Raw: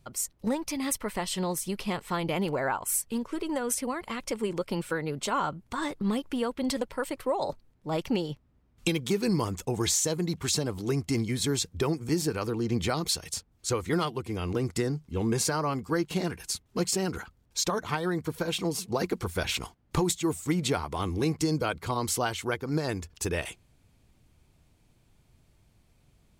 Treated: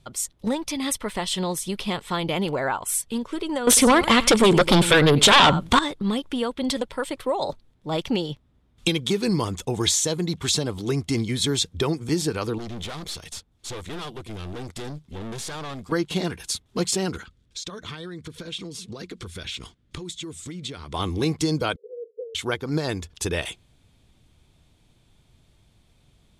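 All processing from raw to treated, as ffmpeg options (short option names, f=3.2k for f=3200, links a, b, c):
-filter_complex "[0:a]asettb=1/sr,asplit=3[a][b][c];[a]atrim=end=3.674[d];[b]atrim=start=3.67:end=5.79,asetpts=PTS-STARTPTS,afade=t=in:d=0.004:c=qsin,afade=t=out:st=2.116:d=0.004:c=qsin,aecho=1:1:96:0.119,atrim=end_sample=93492,aeval=exprs='0.188*sin(PI/2*3.98*val(0)/0.188)':c=same[e];[c]atrim=start=5.786[f];[d][e]acrossfade=d=0.004:c1=hsin:c2=qsin[g];[g][f]acrossfade=d=0.004:c1=qsin:c2=hsin,asettb=1/sr,asplit=3[h][i][j];[h]atrim=end=12.584[k];[i]atrim=start=12.58:end=15.92,asetpts=PTS-STARTPTS,afade=t=in:d=0.004:c=qsin,afade=t=out:st=3.336:d=0.004:c=qsin,aeval=exprs='(tanh(63.1*val(0)+0.55)-tanh(0.55))/63.1':c=same,acrusher=bits=8:mode=log:mix=0:aa=0.000001[l];[j]atrim=start=15.916[m];[k][l]acrossfade=d=0.004:c1=hsin:c2=qsin[n];[n][m]acrossfade=d=0.004:c1=qsin:c2=hsin,asettb=1/sr,asplit=3[o][p][q];[o]atrim=end=17.164[r];[p]atrim=start=17.16:end=20.94,asetpts=PTS-STARTPTS,afade=t=in:d=0.004:c=qsin,afade=t=out:st=3.776:d=0.004:c=qsin,lowpass=9.1k,equalizer=f=810:w=1.6:g=-11.5,acompressor=threshold=-37dB:ratio=5:attack=3.2:release=140:knee=1:detection=peak[s];[q]atrim=start=20.936[t];[r][s]acrossfade=d=0.004:c1=hsin:c2=qsin[u];[u][t]acrossfade=d=0.004:c1=qsin:c2=hsin,asettb=1/sr,asplit=3[v][w][x];[v]atrim=end=21.764[y];[w]atrim=start=21.76:end=22.35,asetpts=PTS-STARTPTS,afade=t=in:d=0.004:c=qsin,afade=t=out:st=0.586:d=0.004:c=qsin,aeval=exprs='val(0)+0.5*0.0106*sgn(val(0))':c=same,asuperpass=centerf=460:order=8:qfactor=4.8[z];[x]atrim=start=22.346[aa];[y][z]acrossfade=d=0.004:c1=hsin:c2=qsin[ab];[ab][aa]acrossfade=d=0.004:c1=qsin:c2=hsin,lowpass=f=12k:w=0.5412,lowpass=f=12k:w=1.3066,equalizer=f=3.5k:t=o:w=0.34:g=9,volume=3.5dB"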